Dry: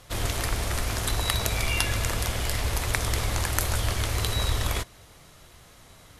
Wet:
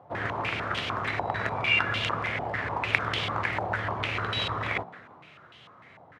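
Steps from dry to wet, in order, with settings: high-pass 110 Hz 24 dB/octave; on a send: frequency-shifting echo 170 ms, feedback 48%, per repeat +68 Hz, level -17.5 dB; on the sum: step-sequenced low-pass 6.7 Hz 810–3100 Hz; trim -2 dB

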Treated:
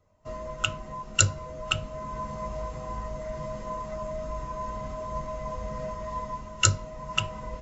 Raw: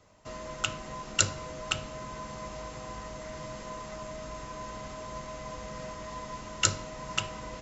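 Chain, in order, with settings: bass shelf 97 Hz +5 dB; hum notches 60/120/180/240/300 Hz; in parallel at -0.5 dB: gain riding within 4 dB 0.5 s; on the sum: spectral contrast expander 1.5:1; trim -2 dB

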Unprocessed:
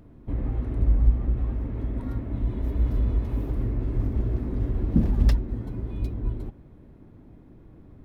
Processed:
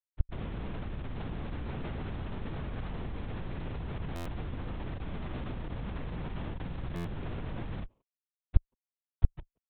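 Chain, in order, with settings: steep low-pass 680 Hz 48 dB/octave; bass shelf 230 Hz +10.5 dB; gain riding within 5 dB 0.5 s; tempo 0.83×; feedback comb 170 Hz, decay 0.22 s, harmonics all, mix 90%; Schmitt trigger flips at -36.5 dBFS; speakerphone echo 180 ms, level -19 dB; LPC vocoder at 8 kHz whisper; buffer glitch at 4.15/6.95 s, samples 512, times 8; trim -7 dB

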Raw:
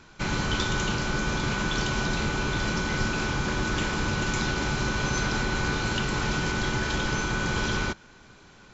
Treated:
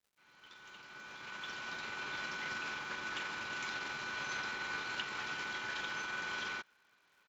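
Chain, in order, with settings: fade-in on the opening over 2.47 s; low-pass 2.1 kHz 12 dB/octave; differentiator; tempo 1.2×; crackle 290 per s -64 dBFS; upward expansion 1.5:1, over -59 dBFS; trim +7.5 dB

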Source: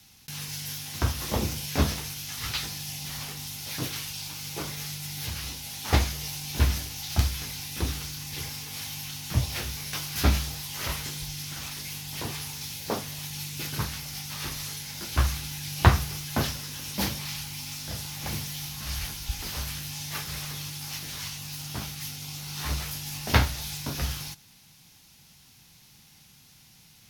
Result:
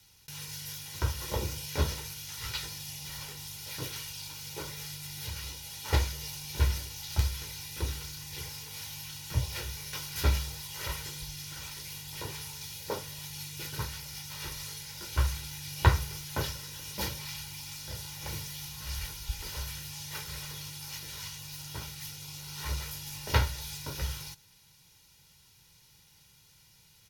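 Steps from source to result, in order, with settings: comb 2.1 ms, depth 63%; trim -6.5 dB

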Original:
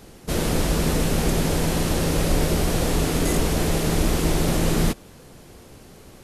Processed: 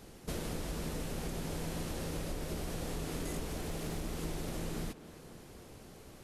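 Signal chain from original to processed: compression 6:1, threshold -28 dBFS, peak gain reduction 12.5 dB; 3.43–4.03 s: hard clipper -24.5 dBFS, distortion -29 dB; on a send: tape echo 263 ms, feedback 76%, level -14 dB, low-pass 3.3 kHz; on the sum: trim -7.5 dB

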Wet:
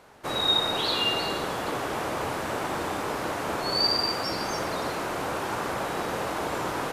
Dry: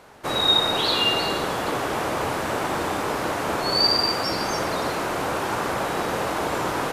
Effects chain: 4.13–4.67 s: crackle 36 per s -> 120 per s -37 dBFS; trim -4.5 dB

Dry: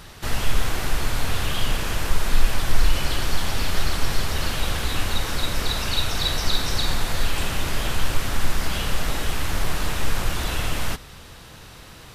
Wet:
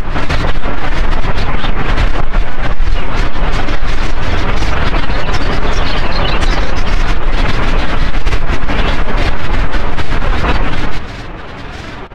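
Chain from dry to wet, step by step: low-pass 2.3 kHz 12 dB/octave; comb 4 ms, depth 33%; compression 3:1, threshold -19 dBFS, peak gain reduction 10.5 dB; granulator, pitch spread up and down by 7 st; reverse echo 1019 ms -12 dB; on a send at -14 dB: reverberation RT60 0.90 s, pre-delay 7 ms; on the sum: loudness maximiser +21 dB; warped record 33 1/3 rpm, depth 160 cents; trim -1 dB

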